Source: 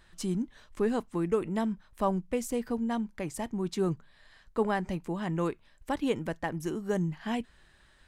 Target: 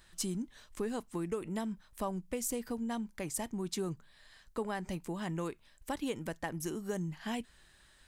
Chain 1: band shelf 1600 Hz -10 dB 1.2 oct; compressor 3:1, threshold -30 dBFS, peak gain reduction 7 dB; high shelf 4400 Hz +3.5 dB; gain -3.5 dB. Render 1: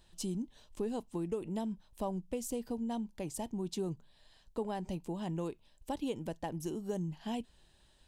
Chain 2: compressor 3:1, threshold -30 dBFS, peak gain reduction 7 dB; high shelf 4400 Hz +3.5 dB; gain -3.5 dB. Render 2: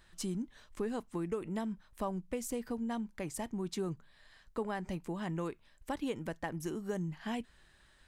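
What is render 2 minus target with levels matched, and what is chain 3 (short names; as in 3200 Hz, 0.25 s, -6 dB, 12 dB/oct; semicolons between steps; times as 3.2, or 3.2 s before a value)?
8000 Hz band -5.5 dB
compressor 3:1, threshold -30 dBFS, peak gain reduction 7 dB; high shelf 4400 Hz +11.5 dB; gain -3.5 dB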